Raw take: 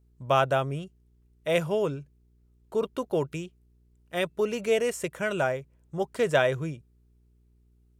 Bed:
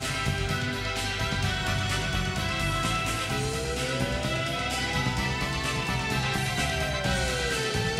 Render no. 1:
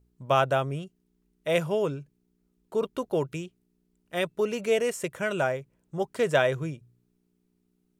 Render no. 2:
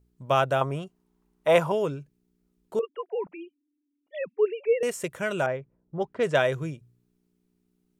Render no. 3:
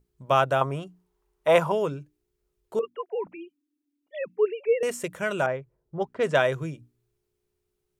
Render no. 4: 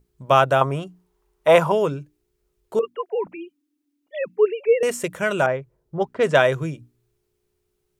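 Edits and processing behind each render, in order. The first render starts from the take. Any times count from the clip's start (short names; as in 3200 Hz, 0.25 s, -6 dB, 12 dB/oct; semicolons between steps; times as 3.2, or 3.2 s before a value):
de-hum 60 Hz, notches 2
0.61–1.72 bell 930 Hz +14.5 dB 1.2 oct; 2.79–4.83 sine-wave speech; 5.46–6.5 low-pass opened by the level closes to 650 Hz, open at -19 dBFS
dynamic EQ 1100 Hz, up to +3 dB, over -35 dBFS, Q 1.4; notches 60/120/180/240/300 Hz
gain +5.5 dB; limiter -2 dBFS, peak gain reduction 1.5 dB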